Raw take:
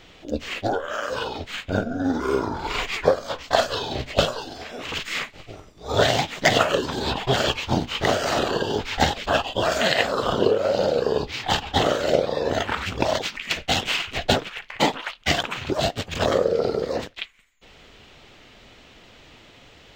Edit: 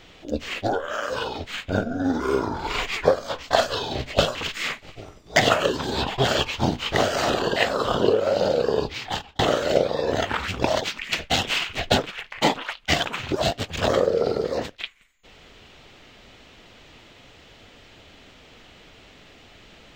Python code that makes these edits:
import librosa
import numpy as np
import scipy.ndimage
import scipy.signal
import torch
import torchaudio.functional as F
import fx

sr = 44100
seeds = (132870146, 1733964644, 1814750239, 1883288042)

y = fx.edit(x, sr, fx.cut(start_s=4.35, length_s=0.51),
    fx.cut(start_s=5.87, length_s=0.58),
    fx.cut(start_s=8.65, length_s=1.29),
    fx.fade_out_span(start_s=11.26, length_s=0.51), tone=tone)